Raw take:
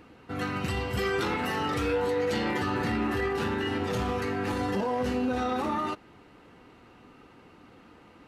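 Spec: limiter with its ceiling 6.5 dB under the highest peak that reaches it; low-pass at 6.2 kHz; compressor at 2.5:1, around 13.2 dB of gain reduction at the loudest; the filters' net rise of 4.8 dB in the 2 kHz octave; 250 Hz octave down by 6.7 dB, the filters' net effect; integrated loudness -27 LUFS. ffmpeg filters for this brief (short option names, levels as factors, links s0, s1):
-af "lowpass=6200,equalizer=f=250:t=o:g=-8.5,equalizer=f=2000:t=o:g=6,acompressor=threshold=0.00501:ratio=2.5,volume=8.41,alimiter=limit=0.133:level=0:latency=1"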